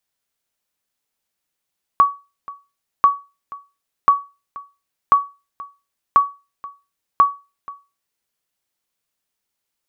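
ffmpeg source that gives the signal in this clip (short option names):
-f lavfi -i "aevalsrc='0.631*(sin(2*PI*1130*mod(t,1.04))*exp(-6.91*mod(t,1.04)/0.28)+0.0891*sin(2*PI*1130*max(mod(t,1.04)-0.48,0))*exp(-6.91*max(mod(t,1.04)-0.48,0)/0.28))':d=6.24:s=44100"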